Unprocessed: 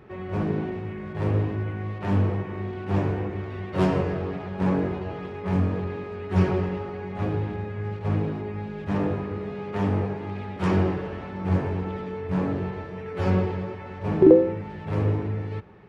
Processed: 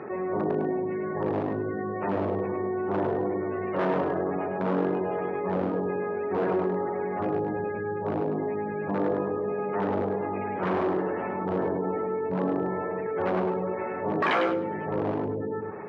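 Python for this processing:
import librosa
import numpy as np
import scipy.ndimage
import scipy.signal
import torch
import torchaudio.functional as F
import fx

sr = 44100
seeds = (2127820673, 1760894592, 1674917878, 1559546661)

p1 = fx.spec_gate(x, sr, threshold_db=-25, keep='strong')
p2 = fx.high_shelf(p1, sr, hz=2300.0, db=-7.5)
p3 = 10.0 ** (-18.5 / 20.0) * (np.abs((p2 / 10.0 ** (-18.5 / 20.0) + 3.0) % 4.0 - 2.0) - 1.0)
p4 = fx.bandpass_edges(p3, sr, low_hz=310.0, high_hz=3300.0)
p5 = p4 + fx.echo_feedback(p4, sr, ms=103, feedback_pct=16, wet_db=-6.0, dry=0)
y = fx.env_flatten(p5, sr, amount_pct=50)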